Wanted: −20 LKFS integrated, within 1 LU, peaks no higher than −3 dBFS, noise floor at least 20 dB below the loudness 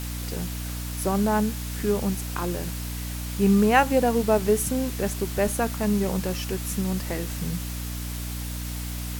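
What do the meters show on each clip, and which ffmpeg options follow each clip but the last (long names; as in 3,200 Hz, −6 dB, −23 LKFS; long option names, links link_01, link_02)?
mains hum 60 Hz; hum harmonics up to 300 Hz; level of the hum −30 dBFS; background noise floor −32 dBFS; target noise floor −46 dBFS; integrated loudness −26.0 LKFS; sample peak −5.0 dBFS; target loudness −20.0 LKFS
→ -af "bandreject=frequency=60:width_type=h:width=4,bandreject=frequency=120:width_type=h:width=4,bandreject=frequency=180:width_type=h:width=4,bandreject=frequency=240:width_type=h:width=4,bandreject=frequency=300:width_type=h:width=4"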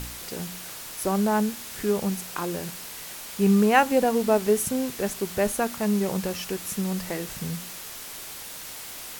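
mains hum none found; background noise floor −39 dBFS; target noise floor −47 dBFS
→ -af "afftdn=noise_reduction=8:noise_floor=-39"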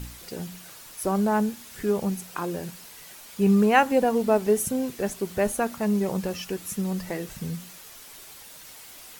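background noise floor −46 dBFS; integrated loudness −25.5 LKFS; sample peak −5.5 dBFS; target loudness −20.0 LKFS
→ -af "volume=5.5dB,alimiter=limit=-3dB:level=0:latency=1"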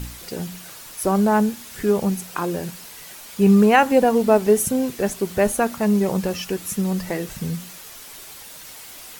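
integrated loudness −20.0 LKFS; sample peak −3.0 dBFS; background noise floor −40 dBFS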